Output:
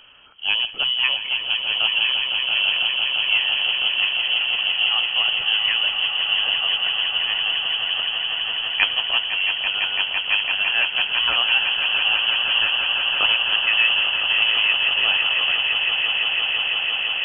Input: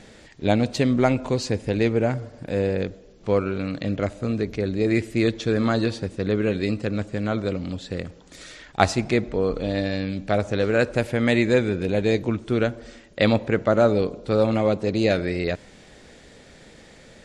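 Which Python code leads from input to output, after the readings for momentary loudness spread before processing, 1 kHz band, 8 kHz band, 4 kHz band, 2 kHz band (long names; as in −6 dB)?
10 LU, −0.5 dB, below −40 dB, +21.5 dB, +12.0 dB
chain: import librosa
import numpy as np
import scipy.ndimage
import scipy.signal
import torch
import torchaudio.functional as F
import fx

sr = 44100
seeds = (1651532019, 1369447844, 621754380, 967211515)

p1 = x + fx.echo_swell(x, sr, ms=168, loudest=8, wet_db=-9.0, dry=0)
p2 = fx.freq_invert(p1, sr, carrier_hz=3200)
y = F.gain(torch.from_numpy(p2), -2.0).numpy()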